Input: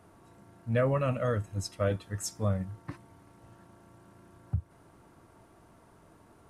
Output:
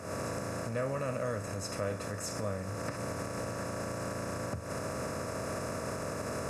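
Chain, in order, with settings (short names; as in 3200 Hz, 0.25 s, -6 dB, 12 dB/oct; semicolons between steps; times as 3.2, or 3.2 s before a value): per-bin compression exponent 0.4; recorder AGC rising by 76 dB/s; low shelf 84 Hz -11.5 dB; notch 3200 Hz, Q 5.4; gain -8.5 dB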